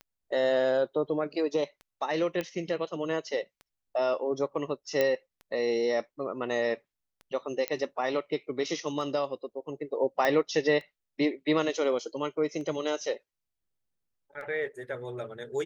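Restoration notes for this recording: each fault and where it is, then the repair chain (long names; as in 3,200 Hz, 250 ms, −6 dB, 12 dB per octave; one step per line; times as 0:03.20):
scratch tick 33 1/3 rpm −32 dBFS
0:02.41: click −19 dBFS
0:05.01: click −13 dBFS
0:07.68: click −14 dBFS
0:10.25: click −14 dBFS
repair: click removal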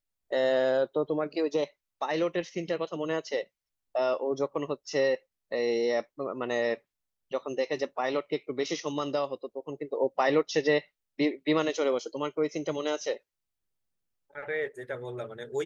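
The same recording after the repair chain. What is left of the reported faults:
none of them is left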